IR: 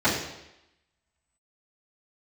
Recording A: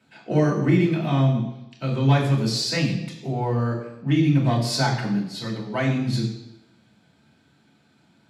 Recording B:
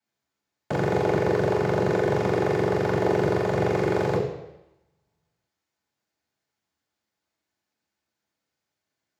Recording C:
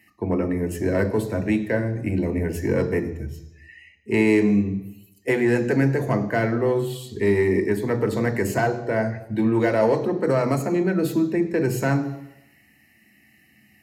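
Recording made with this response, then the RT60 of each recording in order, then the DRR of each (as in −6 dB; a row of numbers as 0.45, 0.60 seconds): B; 0.90, 0.90, 0.90 seconds; −3.0, −13.0, 6.0 decibels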